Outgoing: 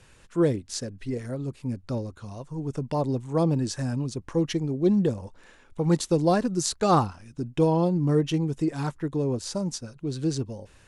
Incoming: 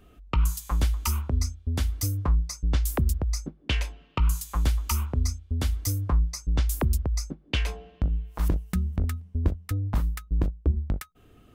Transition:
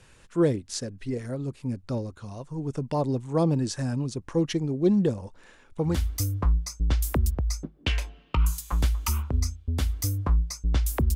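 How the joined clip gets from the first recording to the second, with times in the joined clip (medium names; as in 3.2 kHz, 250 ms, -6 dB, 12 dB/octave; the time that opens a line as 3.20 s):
outgoing
5.92 s: go over to incoming from 1.75 s, crossfade 0.16 s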